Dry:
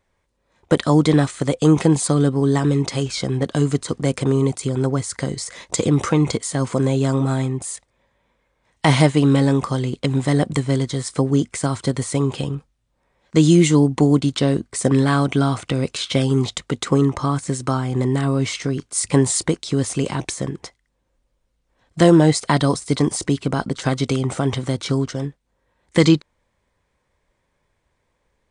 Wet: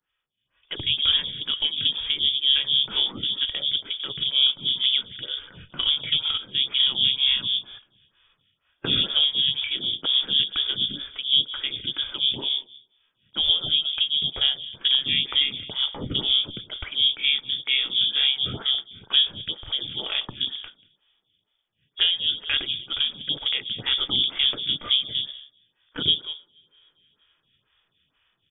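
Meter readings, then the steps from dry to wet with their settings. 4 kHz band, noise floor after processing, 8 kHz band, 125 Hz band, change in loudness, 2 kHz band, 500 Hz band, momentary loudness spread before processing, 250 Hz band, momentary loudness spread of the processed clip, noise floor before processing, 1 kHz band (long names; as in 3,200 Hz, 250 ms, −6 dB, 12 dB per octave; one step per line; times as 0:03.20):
+13.0 dB, −74 dBFS, below −40 dB, −24.5 dB, −2.5 dB, −3.0 dB, −24.0 dB, 9 LU, −25.0 dB, 9 LU, −71 dBFS, −17.5 dB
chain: sub-octave generator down 1 octave, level +1 dB
harmonic and percussive parts rebalanced percussive −7 dB
high-pass filter 95 Hz 12 dB per octave
mains-hum notches 50/100/150/200/250/300/350 Hz
on a send: single-tap delay 187 ms −19 dB
on the sum: coupled-rooms reverb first 0.59 s, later 3.1 s, from −26 dB, DRR 15.5 dB
voice inversion scrambler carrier 3,500 Hz
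parametric band 130 Hz +8.5 dB 1.1 octaves
downward compressor 10 to 1, threshold −13 dBFS, peak gain reduction 8 dB
low-shelf EQ 280 Hz +7.5 dB
automatic gain control gain up to 11.5 dB
phaser with staggered stages 2.1 Hz
level −4.5 dB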